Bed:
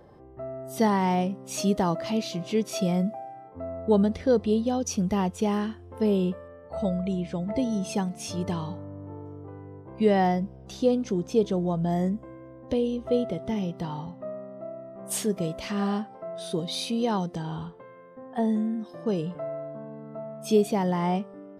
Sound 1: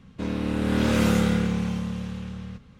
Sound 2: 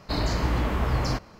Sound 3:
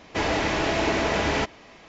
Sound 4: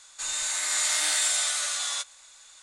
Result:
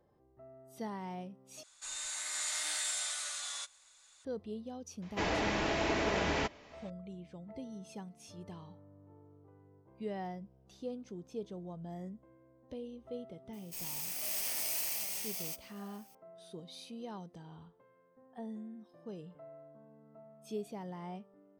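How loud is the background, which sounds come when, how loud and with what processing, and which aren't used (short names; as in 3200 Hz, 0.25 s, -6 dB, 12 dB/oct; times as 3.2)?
bed -18.5 dB
1.63 replace with 4 -11 dB
5.02 add 3 -8.5 dB
13.53 add 4 -10.5 dB + FFT order left unsorted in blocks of 32 samples
not used: 1, 2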